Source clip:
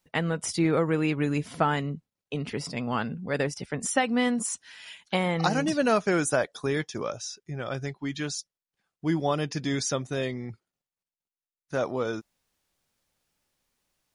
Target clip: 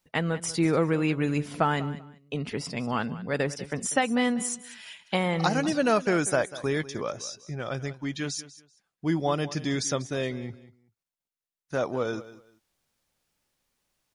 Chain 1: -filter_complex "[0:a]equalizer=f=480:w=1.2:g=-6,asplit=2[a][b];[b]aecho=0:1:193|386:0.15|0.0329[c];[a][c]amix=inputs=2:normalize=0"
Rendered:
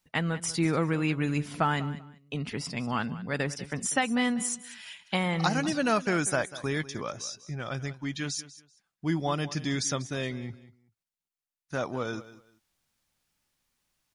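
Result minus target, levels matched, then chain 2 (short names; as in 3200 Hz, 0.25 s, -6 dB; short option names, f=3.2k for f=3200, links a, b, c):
500 Hz band -3.0 dB
-filter_complex "[0:a]asplit=2[a][b];[b]aecho=0:1:193|386:0.15|0.0329[c];[a][c]amix=inputs=2:normalize=0"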